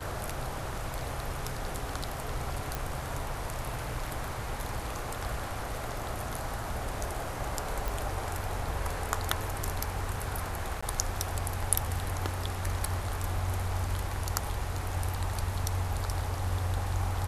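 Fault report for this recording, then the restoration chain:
0:02.75: click
0:07.88: click
0:10.81–0:10.82: drop-out 15 ms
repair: click removal
repair the gap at 0:10.81, 15 ms

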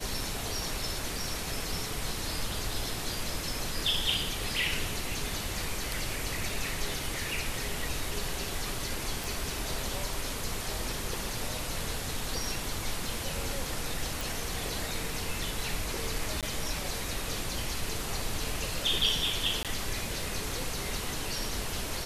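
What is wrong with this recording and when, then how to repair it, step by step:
0:09.24: click
0:14.21: click
0:16.41–0:16.43: drop-out 17 ms
0:19.63–0:19.65: drop-out 17 ms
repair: click removal
repair the gap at 0:16.41, 17 ms
repair the gap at 0:19.63, 17 ms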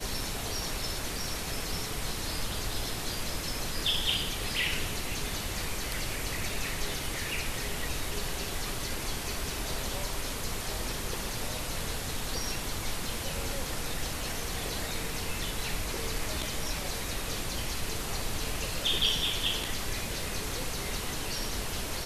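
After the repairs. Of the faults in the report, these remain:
none of them is left

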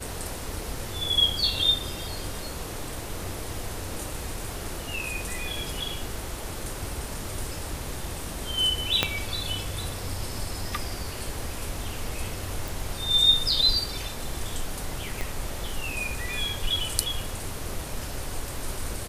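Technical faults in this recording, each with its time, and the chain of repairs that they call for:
0:09.03: click −5 dBFS
0:12.68: click
0:15.21: click −15 dBFS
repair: click removal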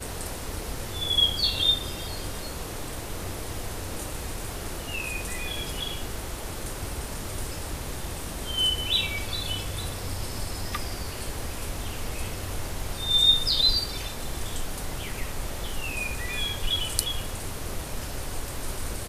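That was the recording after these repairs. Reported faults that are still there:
0:09.03: click
0:15.21: click

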